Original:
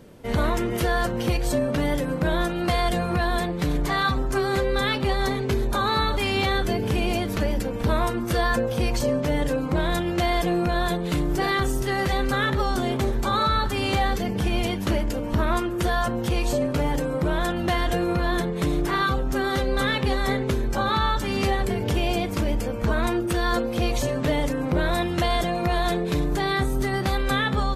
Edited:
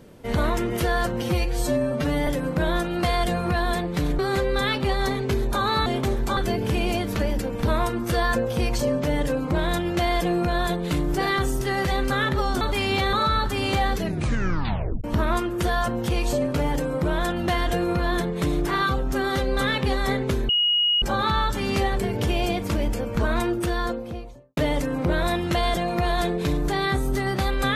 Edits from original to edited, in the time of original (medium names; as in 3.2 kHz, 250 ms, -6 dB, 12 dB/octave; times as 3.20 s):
1.22–1.92 s: stretch 1.5×
3.84–4.39 s: delete
6.06–6.58 s: swap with 12.82–13.33 s
14.17 s: tape stop 1.07 s
20.69 s: add tone 2.89 kHz -17.5 dBFS 0.53 s
23.16–24.24 s: studio fade out